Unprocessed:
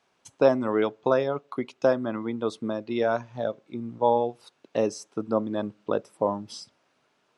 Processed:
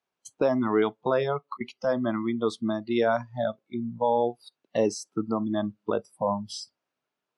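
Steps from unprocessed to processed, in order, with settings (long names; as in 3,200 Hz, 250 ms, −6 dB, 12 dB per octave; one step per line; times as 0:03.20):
brickwall limiter −16.5 dBFS, peak gain reduction 9.5 dB
0:01.13–0:01.61: volume swells 242 ms
noise reduction from a noise print of the clip's start 20 dB
level +3.5 dB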